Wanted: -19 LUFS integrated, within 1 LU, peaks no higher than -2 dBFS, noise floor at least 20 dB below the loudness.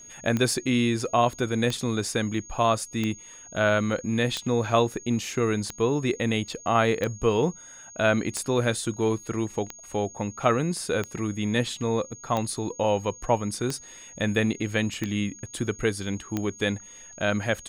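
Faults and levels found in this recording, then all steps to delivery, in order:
clicks 13; steady tone 6600 Hz; tone level -44 dBFS; loudness -26.5 LUFS; peak -7.5 dBFS; loudness target -19.0 LUFS
-> de-click; notch 6600 Hz, Q 30; gain +7.5 dB; limiter -2 dBFS

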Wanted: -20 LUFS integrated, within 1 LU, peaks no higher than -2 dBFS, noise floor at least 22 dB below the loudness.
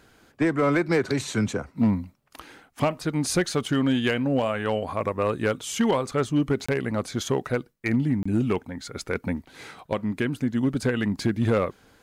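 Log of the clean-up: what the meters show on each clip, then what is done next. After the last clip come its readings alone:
clipped 0.7%; flat tops at -15.0 dBFS; dropouts 2; longest dropout 25 ms; loudness -25.5 LUFS; peak -15.0 dBFS; loudness target -20.0 LUFS
-> clip repair -15 dBFS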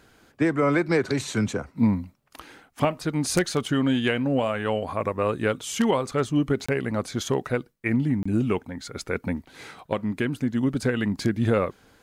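clipped 0.0%; dropouts 2; longest dropout 25 ms
-> interpolate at 6.66/8.23, 25 ms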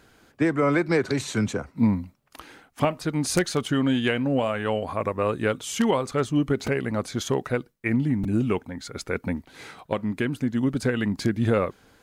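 dropouts 0; loudness -25.5 LUFS; peak -6.0 dBFS; loudness target -20.0 LUFS
-> gain +5.5 dB; limiter -2 dBFS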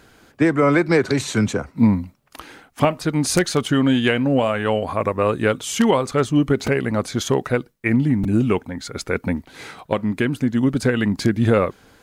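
loudness -20.0 LUFS; peak -2.0 dBFS; noise floor -56 dBFS

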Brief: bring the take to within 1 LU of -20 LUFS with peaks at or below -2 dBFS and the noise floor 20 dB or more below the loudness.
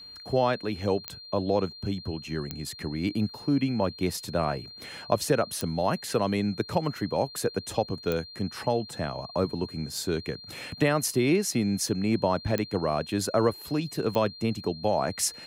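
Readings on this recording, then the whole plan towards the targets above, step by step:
clicks 6; steady tone 4200 Hz; tone level -43 dBFS; loudness -28.5 LUFS; peak -9.0 dBFS; loudness target -20.0 LUFS
-> de-click; notch 4200 Hz, Q 30; gain +8.5 dB; limiter -2 dBFS

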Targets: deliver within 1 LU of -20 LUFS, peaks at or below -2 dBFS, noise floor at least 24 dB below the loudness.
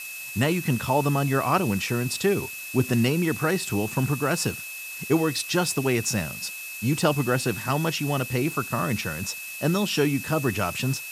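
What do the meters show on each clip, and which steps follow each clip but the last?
steady tone 2600 Hz; tone level -36 dBFS; noise floor -37 dBFS; noise floor target -49 dBFS; loudness -25.0 LUFS; peak -8.0 dBFS; loudness target -20.0 LUFS
-> notch 2600 Hz, Q 30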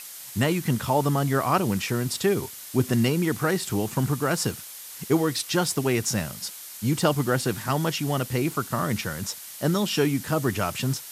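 steady tone none; noise floor -41 dBFS; noise floor target -50 dBFS
-> noise print and reduce 9 dB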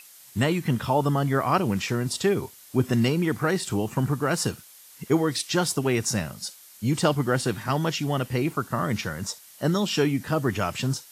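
noise floor -50 dBFS; loudness -25.5 LUFS; peak -8.5 dBFS; loudness target -20.0 LUFS
-> gain +5.5 dB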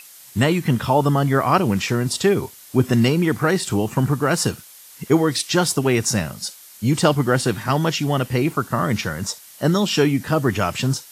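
loudness -20.0 LUFS; peak -3.0 dBFS; noise floor -44 dBFS

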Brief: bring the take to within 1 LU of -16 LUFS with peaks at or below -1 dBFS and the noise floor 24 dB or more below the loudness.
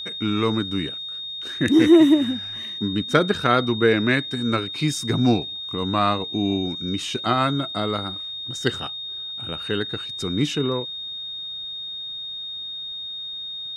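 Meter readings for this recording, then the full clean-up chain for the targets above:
steady tone 3700 Hz; tone level -30 dBFS; loudness -23.0 LUFS; peak -3.0 dBFS; loudness target -16.0 LUFS
-> notch 3700 Hz, Q 30; gain +7 dB; limiter -1 dBFS

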